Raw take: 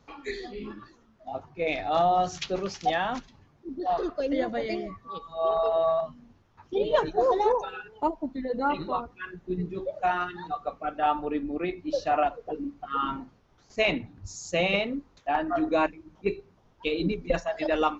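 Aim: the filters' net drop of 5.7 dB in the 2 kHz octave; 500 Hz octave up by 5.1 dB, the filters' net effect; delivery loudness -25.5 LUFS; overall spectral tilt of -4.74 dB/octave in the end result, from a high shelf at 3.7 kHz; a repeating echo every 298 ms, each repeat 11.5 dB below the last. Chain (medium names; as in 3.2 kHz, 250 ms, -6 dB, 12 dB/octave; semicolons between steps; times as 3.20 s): peaking EQ 500 Hz +7 dB; peaking EQ 2 kHz -7 dB; treble shelf 3.7 kHz -4 dB; feedback delay 298 ms, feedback 27%, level -11.5 dB; trim -0.5 dB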